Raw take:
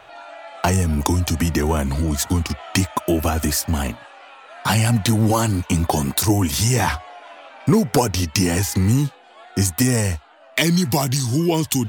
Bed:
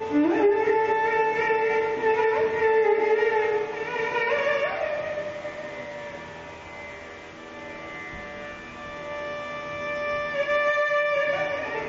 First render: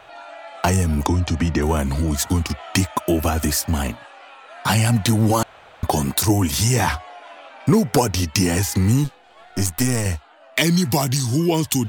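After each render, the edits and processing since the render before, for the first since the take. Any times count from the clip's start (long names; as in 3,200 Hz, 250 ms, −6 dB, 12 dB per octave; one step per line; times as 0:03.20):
0:01.06–0:01.62: high-frequency loss of the air 100 metres
0:05.43–0:05.83: fill with room tone
0:09.04–0:10.06: gain on one half-wave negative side −7 dB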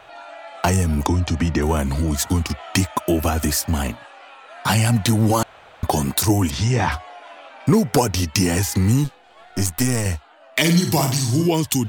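0:06.50–0:06.92: high-frequency loss of the air 130 metres
0:10.59–0:11.48: flutter between parallel walls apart 8.9 metres, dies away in 0.46 s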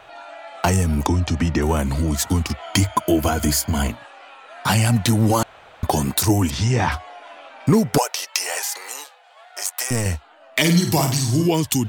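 0:02.62–0:03.89: EQ curve with evenly spaced ripples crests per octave 1.8, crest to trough 9 dB
0:07.98–0:09.91: Butterworth high-pass 540 Hz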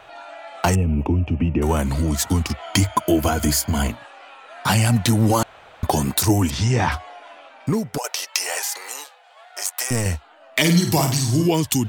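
0:00.75–0:01.62: drawn EQ curve 420 Hz 0 dB, 1,800 Hz −16 dB, 2,700 Hz 0 dB, 3,800 Hz −28 dB, 7,000 Hz −29 dB, 16,000 Hz −25 dB
0:07.05–0:08.04: fade out linear, to −10.5 dB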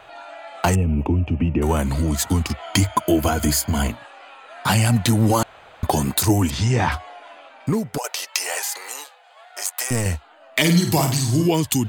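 notch filter 5,600 Hz, Q 11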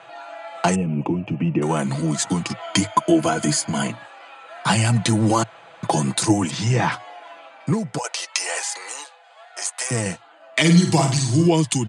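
Chebyshev band-pass filter 110–9,700 Hz, order 5
comb filter 6 ms, depth 44%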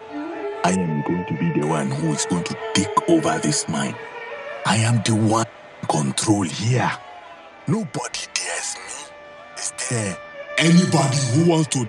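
mix in bed −9 dB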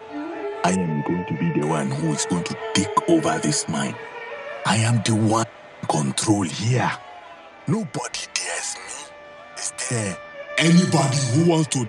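level −1 dB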